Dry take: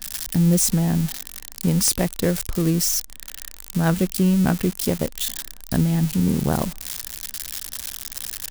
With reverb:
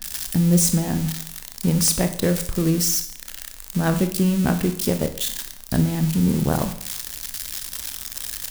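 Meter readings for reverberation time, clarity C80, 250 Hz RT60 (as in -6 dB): 0.60 s, 15.0 dB, 0.60 s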